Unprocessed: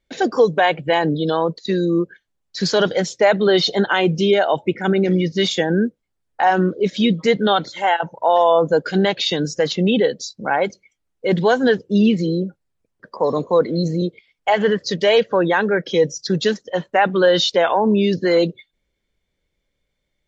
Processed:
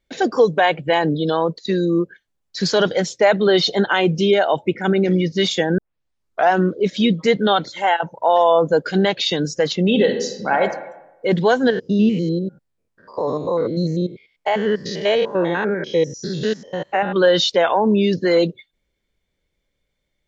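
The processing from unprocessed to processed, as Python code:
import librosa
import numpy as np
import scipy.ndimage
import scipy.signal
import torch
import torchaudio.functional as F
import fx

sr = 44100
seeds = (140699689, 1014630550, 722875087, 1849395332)

y = fx.reverb_throw(x, sr, start_s=9.85, length_s=0.77, rt60_s=0.95, drr_db=4.0)
y = fx.spec_steps(y, sr, hold_ms=100, at=(11.7, 17.16))
y = fx.edit(y, sr, fx.tape_start(start_s=5.78, length_s=0.73), tone=tone)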